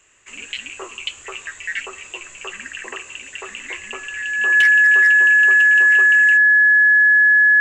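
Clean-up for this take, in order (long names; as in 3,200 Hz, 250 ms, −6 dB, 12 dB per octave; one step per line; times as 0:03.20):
clipped peaks rebuilt −8 dBFS
notch filter 1,700 Hz, Q 30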